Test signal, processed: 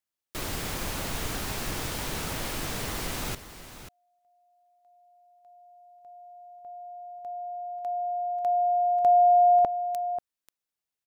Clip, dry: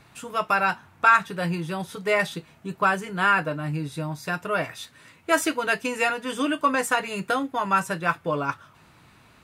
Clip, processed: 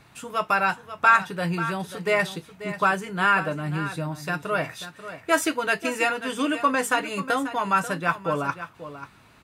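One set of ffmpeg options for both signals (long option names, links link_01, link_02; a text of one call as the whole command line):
ffmpeg -i in.wav -af "aecho=1:1:538:0.237" out.wav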